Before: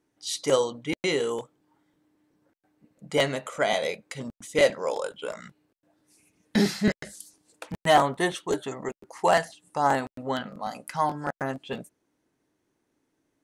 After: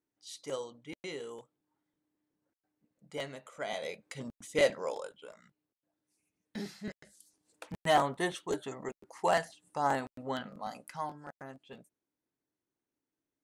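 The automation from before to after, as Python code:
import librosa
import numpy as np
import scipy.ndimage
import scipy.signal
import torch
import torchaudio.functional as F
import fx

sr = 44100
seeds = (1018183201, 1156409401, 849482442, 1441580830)

y = fx.gain(x, sr, db=fx.line((3.49, -15.5), (4.18, -6.0), (4.81, -6.0), (5.36, -18.0), (7.1, -18.0), (7.63, -7.0), (10.72, -7.0), (11.27, -16.5)))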